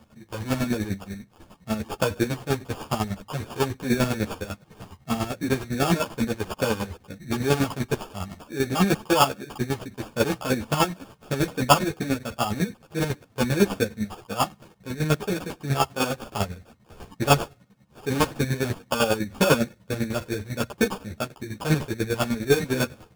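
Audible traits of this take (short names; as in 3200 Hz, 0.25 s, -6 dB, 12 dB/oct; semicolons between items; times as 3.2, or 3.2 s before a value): aliases and images of a low sample rate 2000 Hz, jitter 0%; chopped level 10 Hz, depth 65%, duty 30%; a shimmering, thickened sound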